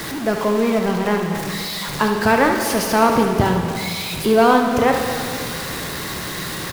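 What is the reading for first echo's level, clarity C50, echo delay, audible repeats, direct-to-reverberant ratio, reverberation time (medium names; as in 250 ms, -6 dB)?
-9.5 dB, 3.5 dB, 72 ms, 1, 2.5 dB, 2.5 s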